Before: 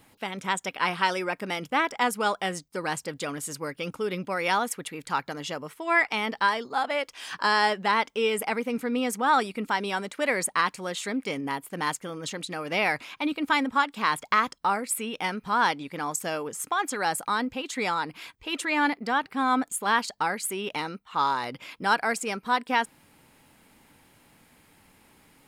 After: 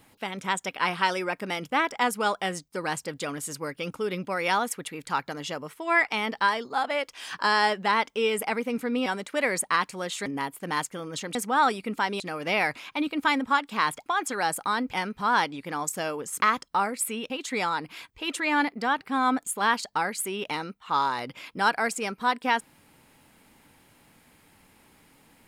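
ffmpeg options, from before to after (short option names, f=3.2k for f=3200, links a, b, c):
-filter_complex "[0:a]asplit=9[a][b][c][d][e][f][g][h][i];[a]atrim=end=9.062[j];[b]atrim=start=9.908:end=11.112[k];[c]atrim=start=11.358:end=12.452[l];[d]atrim=start=9.058:end=9.912[m];[e]atrim=start=12.448:end=14.312[n];[f]atrim=start=16.678:end=17.552[o];[g]atrim=start=15.198:end=16.682[p];[h]atrim=start=14.308:end=15.202[q];[i]atrim=start=17.548[r];[j][k]acrossfade=d=0.004:c1=hsin:c2=hsin[s];[s][l]acrossfade=d=0.004:c1=hsin:c2=hsin[t];[t][m]acrossfade=d=0.004:c1=hsin:c2=hsin[u];[u][n]acrossfade=d=0.004:c1=hsin:c2=hsin[v];[v][o]acrossfade=d=0.004:c1=hsin:c2=hsin[w];[w][p]acrossfade=d=0.004:c1=hsin:c2=hsin[x];[x][q]acrossfade=d=0.004:c1=hsin:c2=hsin[y];[y][r]acrossfade=d=0.004:c1=hsin:c2=hsin"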